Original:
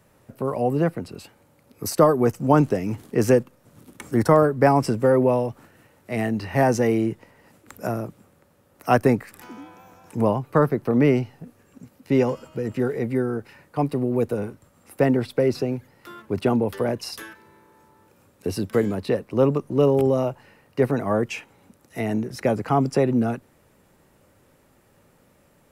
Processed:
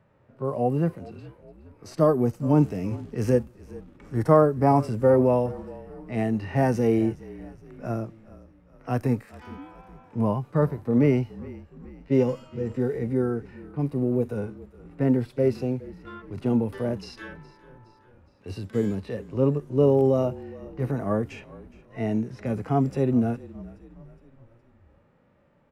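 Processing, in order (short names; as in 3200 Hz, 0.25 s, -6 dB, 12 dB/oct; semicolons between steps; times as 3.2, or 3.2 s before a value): low-pass opened by the level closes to 2200 Hz, open at -19 dBFS; harmonic-percussive split percussive -16 dB; frequency-shifting echo 0.416 s, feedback 52%, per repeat -39 Hz, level -19.5 dB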